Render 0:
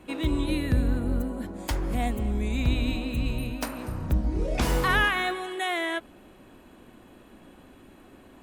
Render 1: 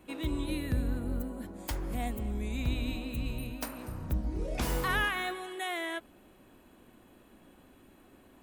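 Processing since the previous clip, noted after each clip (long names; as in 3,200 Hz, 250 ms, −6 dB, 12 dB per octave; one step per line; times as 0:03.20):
high-shelf EQ 12,000 Hz +11.5 dB
level −7 dB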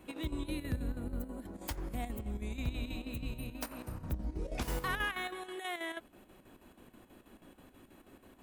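in parallel at +2 dB: downward compressor, threshold −43 dBFS, peak gain reduction 17 dB
on the sum: square-wave tremolo 6.2 Hz, depth 60%, duty 70%
level −6 dB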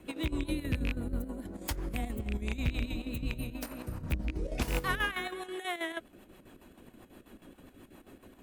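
loose part that buzzes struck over −32 dBFS, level −26 dBFS
rotating-speaker cabinet horn 7.5 Hz
level +5.5 dB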